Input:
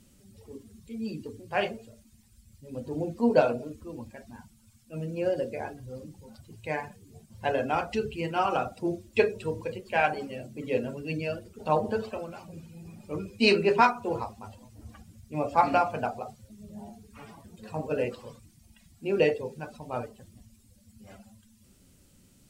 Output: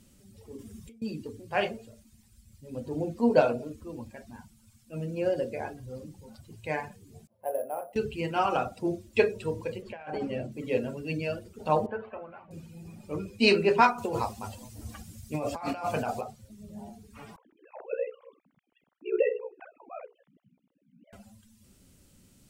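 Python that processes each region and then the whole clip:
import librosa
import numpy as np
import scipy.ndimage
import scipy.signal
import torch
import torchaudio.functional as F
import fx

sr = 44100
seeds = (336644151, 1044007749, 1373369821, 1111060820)

y = fx.chain(x, sr, fx.notch(hz=4200.0, q=7.3),
    fx.over_compress(threshold_db=-48.0, ratio=-1.0), at=(0.57, 1.02))
y = fx.chain(y, sr, fx.bandpass_q(hz=590.0, q=4.1),
    fx.resample_bad(factor=4, down='none', up='hold'), at=(7.27, 7.96))
y = fx.chain(y, sr, fx.over_compress(threshold_db=-36.0, ratio=-1.0),
    fx.lowpass(hz=2000.0, slope=6), at=(9.82, 10.52))
y = fx.chain(y, sr, fx.lowpass(hz=2100.0, slope=24),
    fx.low_shelf(hz=490.0, db=-11.5), at=(11.86, 12.51))
y = fx.chain(y, sr, fx.high_shelf(hz=3500.0, db=8.5),
    fx.over_compress(threshold_db=-32.0, ratio=-1.0), at=(13.98, 16.21))
y = fx.chain(y, sr, fx.sine_speech(),
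    fx.ring_mod(carrier_hz=31.0), at=(17.36, 21.13))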